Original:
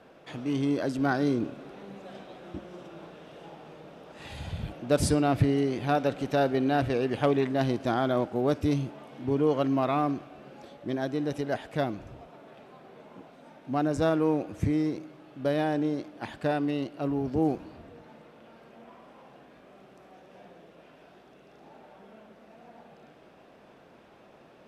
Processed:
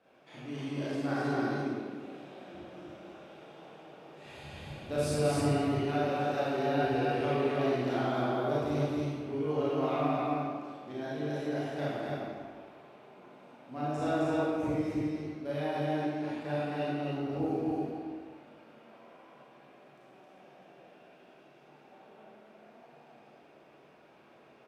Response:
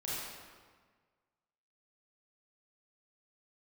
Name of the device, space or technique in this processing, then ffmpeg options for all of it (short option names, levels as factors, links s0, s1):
stadium PA: -filter_complex "[0:a]highpass=f=160:p=1,equalizer=f=2400:t=o:w=0.27:g=4.5,aecho=1:1:180.8|265.3:0.282|0.794[s0];[1:a]atrim=start_sample=2205[s1];[s0][s1]afir=irnorm=-1:irlink=0,volume=0.376"